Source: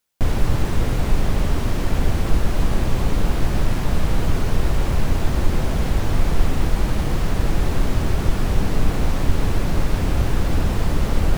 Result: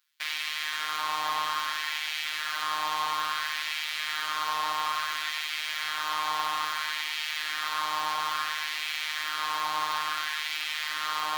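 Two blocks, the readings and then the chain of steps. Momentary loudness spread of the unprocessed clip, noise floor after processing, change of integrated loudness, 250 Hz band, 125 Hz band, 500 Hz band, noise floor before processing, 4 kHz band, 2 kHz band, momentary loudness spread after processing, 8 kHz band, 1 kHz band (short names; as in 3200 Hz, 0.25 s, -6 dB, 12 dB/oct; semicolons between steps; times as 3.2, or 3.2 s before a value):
1 LU, -34 dBFS, -6.5 dB, -30.0 dB, under -40 dB, -20.5 dB, -23 dBFS, +5.5 dB, +3.5 dB, 2 LU, -2.5 dB, +2.5 dB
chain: LFO high-pass sine 0.59 Hz 940–2200 Hz; graphic EQ 125/500/1000/4000/8000 Hz -10/-9/+3/+7/-4 dB; robotiser 153 Hz; FDN reverb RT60 3.2 s, high-frequency decay 0.3×, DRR 6.5 dB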